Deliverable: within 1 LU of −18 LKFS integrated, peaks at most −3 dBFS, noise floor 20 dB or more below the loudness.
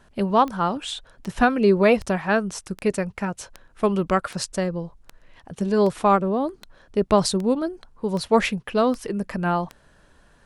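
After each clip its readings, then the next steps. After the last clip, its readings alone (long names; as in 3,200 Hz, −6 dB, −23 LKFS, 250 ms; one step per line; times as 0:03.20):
number of clicks 13; integrated loudness −23.0 LKFS; sample peak −3.0 dBFS; target loudness −18.0 LKFS
→ click removal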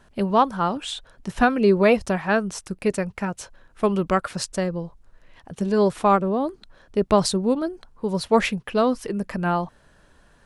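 number of clicks 0; integrated loudness −23.0 LKFS; sample peak −3.0 dBFS; target loudness −18.0 LKFS
→ level +5 dB
brickwall limiter −3 dBFS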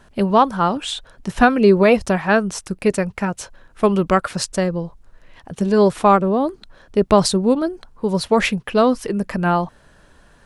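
integrated loudness −18.0 LKFS; sample peak −3.0 dBFS; background noise floor −52 dBFS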